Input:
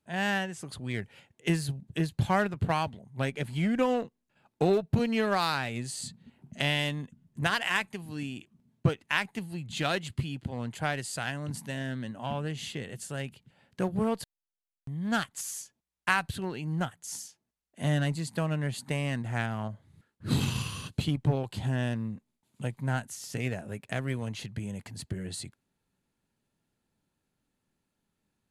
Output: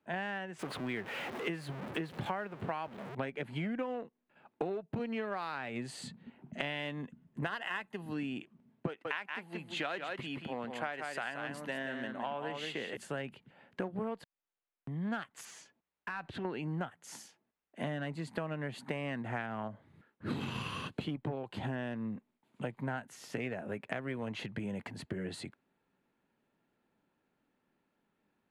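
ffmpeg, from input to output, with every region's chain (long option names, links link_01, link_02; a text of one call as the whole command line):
ffmpeg -i in.wav -filter_complex "[0:a]asettb=1/sr,asplit=3[link_01][link_02][link_03];[link_01]atrim=end=0.594[link_04];[link_02]atrim=start=0.59:end=3.15,asetpts=PTS-STARTPTS,afade=type=in:duration=0.004:curve=qsin,afade=type=out:start_time=2.556:duration=0.004:curve=qsin,aeval=exprs='val(0)+0.5*0.015*sgn(val(0))':channel_layout=same,lowshelf=frequency=130:gain=-9[link_05];[link_03]atrim=start=3.146[link_06];[link_04][link_05]acrossfade=duration=0.004:curve1=hsin:curve2=qsin[link_07];[link_07][link_06]acrossfade=duration=0.004:curve1=qsin:curve2=hsin,asettb=1/sr,asplit=3[link_08][link_09][link_10];[link_08]atrim=end=7.464[link_11];[link_09]atrim=start=7.46:end=8.14,asetpts=PTS-STARTPTS,afade=type=in:duration=0.004:curve=qsin,afade=type=out:start_time=0.676:duration=0.004:curve=qsin,asuperstop=centerf=2300:order=4:qfactor=7.7,highshelf=frequency=7700:gain=5[link_12];[link_10]atrim=start=8.136[link_13];[link_11][link_12]acrossfade=duration=0.004:curve1=hsin:curve2=qsin[link_14];[link_14][link_13]acrossfade=duration=0.004:curve1=qsin:curve2=hsin,asettb=1/sr,asplit=3[link_15][link_16][link_17];[link_15]atrim=end=8.874[link_18];[link_16]atrim=start=8.87:end=12.97,asetpts=PTS-STARTPTS,afade=type=in:duration=0.004:curve=qsin,afade=type=out:start_time=4.096:duration=0.004:curve=qsin,highpass=frequency=440:poles=1,aecho=1:1:178:0.447,atrim=end_sample=180810[link_19];[link_17]atrim=start=12.966[link_20];[link_18][link_19]acrossfade=duration=0.004:curve1=hsin:curve2=qsin[link_21];[link_21][link_20]acrossfade=duration=0.004:curve1=qsin:curve2=hsin,asettb=1/sr,asplit=3[link_22][link_23][link_24];[link_22]atrim=end=15.454[link_25];[link_23]atrim=start=15.45:end=16.45,asetpts=PTS-STARTPTS,afade=type=in:duration=0.004:curve=qsin,afade=type=out:start_time=0.996:duration=0.004:curve=qsin,lowpass=6500,acompressor=threshold=-36dB:ratio=5:attack=3.2:release=140:knee=1:detection=peak,asoftclip=type=hard:threshold=-36.5dB[link_26];[link_24]atrim=start=16.446[link_27];[link_25][link_26]acrossfade=duration=0.004:curve1=hsin:curve2=qsin[link_28];[link_28][link_27]acrossfade=duration=0.004:curve1=qsin:curve2=hsin,acrossover=split=200 2900:gain=0.2 1 0.126[link_29][link_30][link_31];[link_29][link_30][link_31]amix=inputs=3:normalize=0,acompressor=threshold=-39dB:ratio=10,volume=5.5dB" out.wav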